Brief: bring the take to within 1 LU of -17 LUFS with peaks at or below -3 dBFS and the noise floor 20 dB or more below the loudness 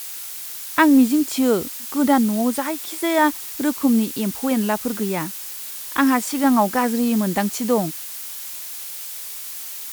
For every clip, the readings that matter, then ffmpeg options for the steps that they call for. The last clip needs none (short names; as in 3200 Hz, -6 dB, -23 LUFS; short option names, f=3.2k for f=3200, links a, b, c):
noise floor -33 dBFS; noise floor target -41 dBFS; loudness -21.0 LUFS; peak -3.5 dBFS; loudness target -17.0 LUFS
-> -af "afftdn=nr=8:nf=-33"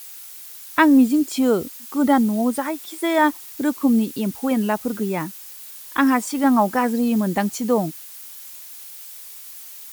noise floor -39 dBFS; noise floor target -40 dBFS
-> -af "afftdn=nr=6:nf=-39"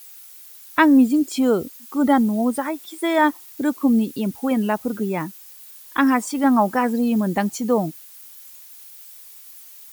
noise floor -44 dBFS; loudness -20.5 LUFS; peak -3.5 dBFS; loudness target -17.0 LUFS
-> -af "volume=3.5dB,alimiter=limit=-3dB:level=0:latency=1"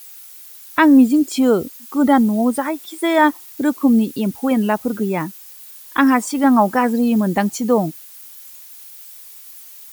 loudness -17.0 LUFS; peak -3.0 dBFS; noise floor -40 dBFS